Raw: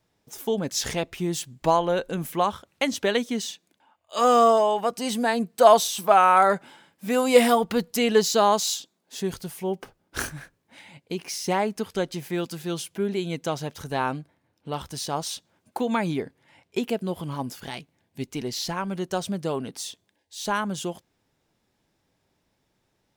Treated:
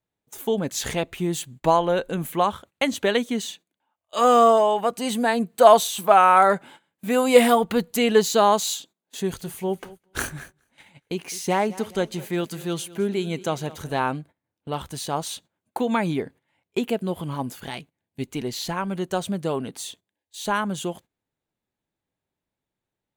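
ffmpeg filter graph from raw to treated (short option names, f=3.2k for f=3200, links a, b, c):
-filter_complex "[0:a]asettb=1/sr,asplit=3[a][b][c];[a]atrim=end=9.184[d];[b]atrim=start=9.18:end=14,asetpts=PTS-STARTPTS,afade=t=in:d=0.004:c=qsin,afade=t=out:st=4.816:d=0.004:c=qsin,equalizer=f=6.1k:w=1.9:g=2.5,aecho=1:1:209|418|627|836:0.112|0.0516|0.0237|0.0109,atrim=end_sample=212562[e];[c]atrim=start=13.996[f];[d][e]acrossfade=d=0.004:c1=hsin:c2=qsin[g];[g][f]acrossfade=d=0.004:c1=qsin:c2=hsin,agate=range=-16dB:threshold=-46dB:ratio=16:detection=peak,equalizer=f=5.3k:t=o:w=0.3:g=-10.5,volume=2dB"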